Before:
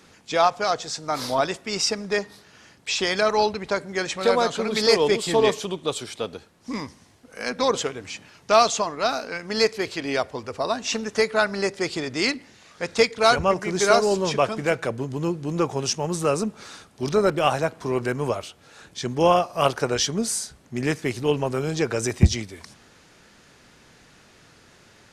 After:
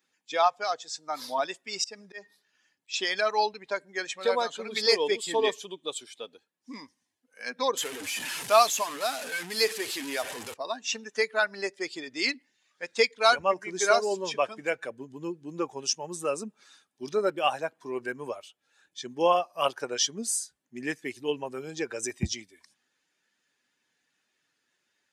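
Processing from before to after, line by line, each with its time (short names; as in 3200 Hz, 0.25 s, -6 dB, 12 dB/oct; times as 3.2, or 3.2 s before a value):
1.69–2.94 auto swell 0.142 s
7.77–10.54 delta modulation 64 kbps, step -20.5 dBFS
whole clip: per-bin expansion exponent 1.5; HPF 550 Hz 6 dB/oct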